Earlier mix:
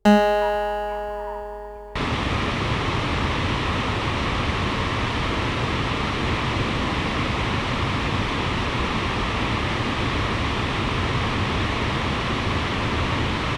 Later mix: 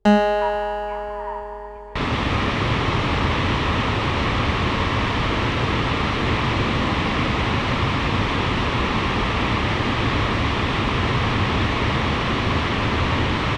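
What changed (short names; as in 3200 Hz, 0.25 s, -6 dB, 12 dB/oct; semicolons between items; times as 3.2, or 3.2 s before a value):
speech +6.0 dB; second sound: send +7.5 dB; master: add air absorption 51 m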